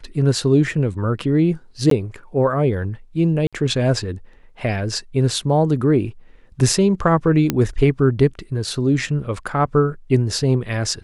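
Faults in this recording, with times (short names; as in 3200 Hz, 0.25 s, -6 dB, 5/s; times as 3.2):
1.9–1.91 gap 13 ms
3.47–3.53 gap 56 ms
7.5 pop -4 dBFS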